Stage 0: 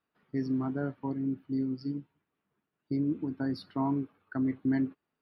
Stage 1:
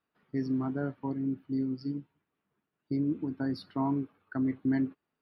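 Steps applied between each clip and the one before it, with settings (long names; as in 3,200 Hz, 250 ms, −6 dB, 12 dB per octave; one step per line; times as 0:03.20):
no processing that can be heard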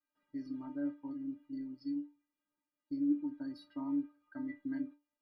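stiff-string resonator 290 Hz, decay 0.26 s, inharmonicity 0.008
level +4.5 dB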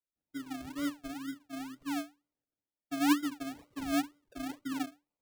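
sample-and-hold swept by an LFO 36×, swing 60% 2.1 Hz
multiband upward and downward expander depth 40%
level +2 dB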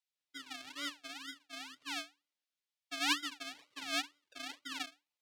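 resonant band-pass 3,500 Hz, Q 1.1
level +7 dB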